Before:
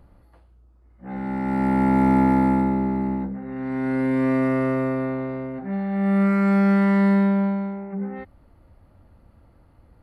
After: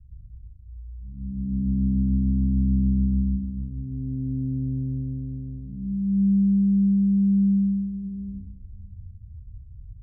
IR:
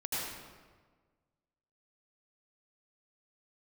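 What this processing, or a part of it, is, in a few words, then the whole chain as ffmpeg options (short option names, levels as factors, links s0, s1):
club heard from the street: -filter_complex "[0:a]alimiter=limit=0.211:level=0:latency=1,lowpass=f=120:w=0.5412,lowpass=f=120:w=1.3066[s0];[1:a]atrim=start_sample=2205[s1];[s0][s1]afir=irnorm=-1:irlink=0,volume=2.37"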